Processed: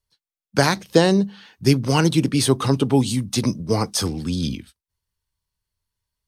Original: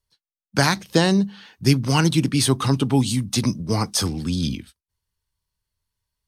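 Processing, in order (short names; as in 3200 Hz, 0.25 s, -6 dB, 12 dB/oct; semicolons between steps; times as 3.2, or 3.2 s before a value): dynamic EQ 480 Hz, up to +7 dB, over -34 dBFS, Q 1.3; gain -1 dB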